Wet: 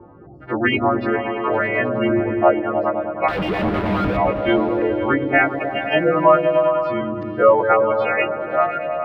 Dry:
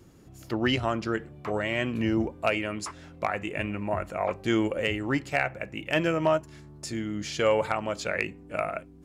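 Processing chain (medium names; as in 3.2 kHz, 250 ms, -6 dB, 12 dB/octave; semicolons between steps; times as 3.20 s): partials quantised in pitch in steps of 2 st; reverb removal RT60 1 s; spectral gate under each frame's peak -20 dB strong; peaking EQ 650 Hz +11.5 dB 2.9 oct; in parallel at -0.5 dB: compression, threshold -44 dBFS, peak gain reduction 31 dB; on the sum: LFO low-pass saw up 0.83 Hz 900–4700 Hz; 3.28–4.17 s: Schmitt trigger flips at -50 dBFS; 5.42–6.66 s: added noise white -46 dBFS; distance through air 430 m; delay with an opening low-pass 103 ms, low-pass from 200 Hz, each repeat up 1 oct, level 0 dB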